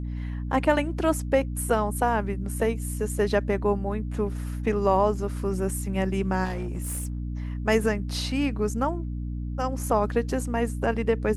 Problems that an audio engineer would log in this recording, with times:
hum 60 Hz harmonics 5 -31 dBFS
6.44–7.2 clipped -26 dBFS

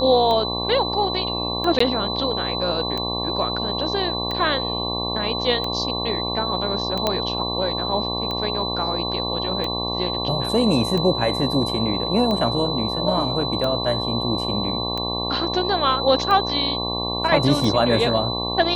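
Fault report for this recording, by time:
buzz 60 Hz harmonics 19 -28 dBFS
tick 45 rpm -14 dBFS
tone 4000 Hz -26 dBFS
1.79–1.8 gap 14 ms
7.07 pop -6 dBFS

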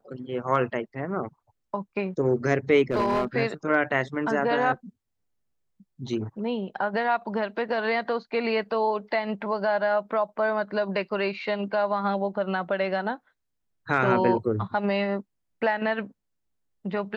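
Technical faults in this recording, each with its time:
2.91–3.25 clipped -19.5 dBFS

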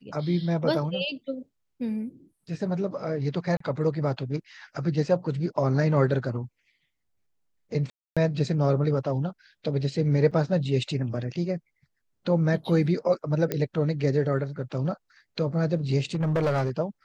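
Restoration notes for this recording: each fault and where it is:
3.57–3.6 gap 34 ms
7.9–8.17 gap 0.266 s
10.31–10.32 gap 5.7 ms
13.52 pop -13 dBFS
16.14–16.7 clipped -20.5 dBFS

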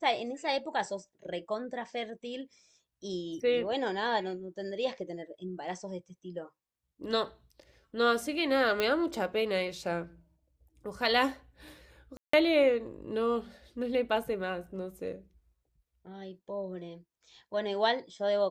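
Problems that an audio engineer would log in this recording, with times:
8.8 pop -15 dBFS
12.17–12.33 gap 0.164 s

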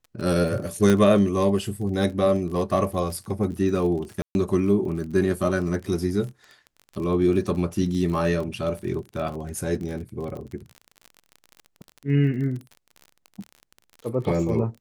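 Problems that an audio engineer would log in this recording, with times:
crackle 36/s -32 dBFS
0.9 pop -9 dBFS
4.22–4.35 gap 0.131 s

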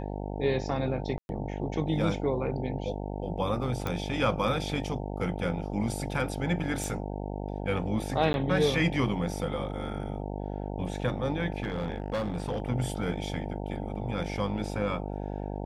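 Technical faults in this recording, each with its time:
buzz 50 Hz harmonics 18 -35 dBFS
1.18–1.29 gap 0.111 s
3.87 pop -18 dBFS
6.84 pop
8.33–8.34 gap 11 ms
11.63–12.6 clipped -26 dBFS

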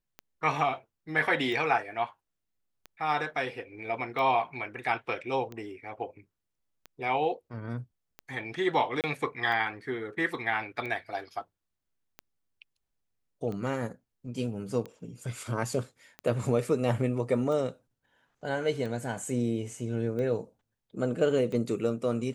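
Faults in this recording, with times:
tick 45 rpm -26 dBFS
9.01–9.04 gap 28 ms

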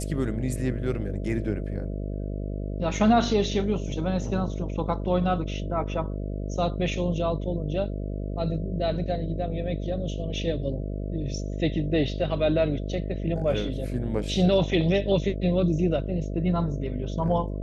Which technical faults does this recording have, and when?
buzz 50 Hz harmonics 13 -31 dBFS

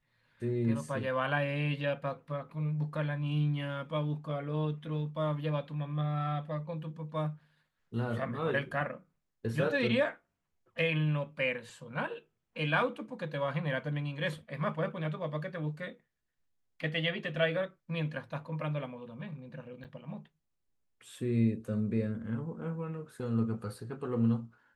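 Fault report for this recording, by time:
19.84–19.85 gap 8.1 ms

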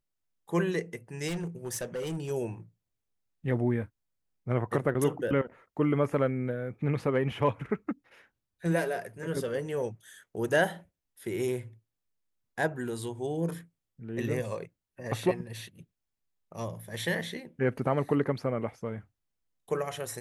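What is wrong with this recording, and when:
1.27–2.31 clipped -30 dBFS

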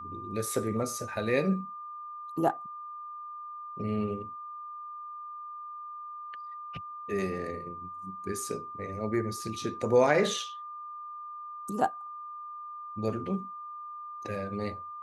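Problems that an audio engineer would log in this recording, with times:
tone 1200 Hz -39 dBFS

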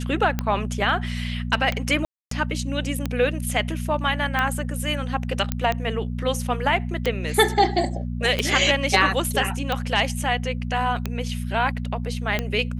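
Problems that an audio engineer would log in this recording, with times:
hum 60 Hz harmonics 4 -28 dBFS
tick 45 rpm -10 dBFS
2.05–2.31 gap 0.263 s
5.52 pop -8 dBFS

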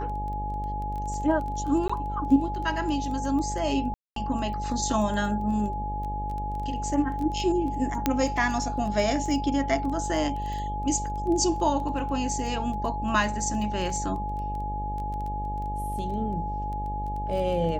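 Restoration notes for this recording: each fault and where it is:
buzz 50 Hz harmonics 15 -33 dBFS
crackle 10/s -33 dBFS
tone 840 Hz -31 dBFS
1.88–1.9 gap 15 ms
3.94–4.16 gap 0.223 s
8.06 pop -8 dBFS

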